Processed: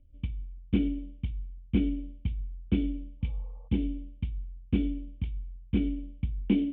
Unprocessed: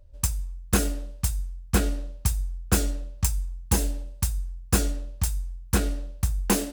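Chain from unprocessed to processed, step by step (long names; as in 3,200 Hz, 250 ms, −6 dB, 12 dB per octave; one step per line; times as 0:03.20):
healed spectral selection 0:03.24–0:03.65, 460–1,200 Hz after
formant resonators in series i
level +6.5 dB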